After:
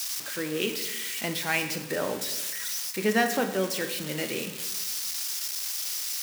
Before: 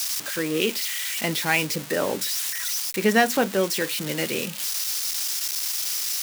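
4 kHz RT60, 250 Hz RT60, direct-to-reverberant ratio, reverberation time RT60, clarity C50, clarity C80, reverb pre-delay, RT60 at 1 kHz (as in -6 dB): 1.0 s, 1.3 s, 7.0 dB, 1.2 s, 9.0 dB, 11.0 dB, 19 ms, 1.1 s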